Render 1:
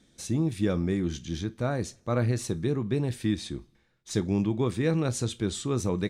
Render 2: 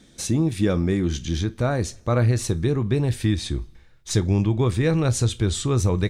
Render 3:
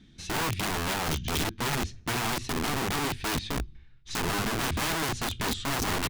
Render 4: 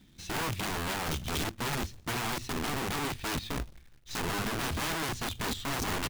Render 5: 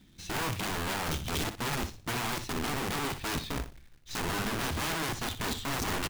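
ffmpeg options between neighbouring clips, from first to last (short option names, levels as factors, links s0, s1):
-filter_complex "[0:a]asubboost=boost=6:cutoff=84,asplit=2[s0][s1];[s1]acompressor=threshold=0.0224:ratio=6,volume=1[s2];[s0][s2]amix=inputs=2:normalize=0,volume=1.5"
-af "firequalizer=gain_entry='entry(130,0);entry(530,-10);entry(2800,-3);entry(8200,-20)':delay=0.05:min_phase=1,aeval=exprs='(mod(15*val(0)+1,2)-1)/15':c=same,equalizer=f=540:t=o:w=0.46:g=-8.5"
-af "acrusher=bits=2:mode=log:mix=0:aa=0.000001,volume=0.631"
-af "aecho=1:1:61|122|183:0.282|0.0564|0.0113"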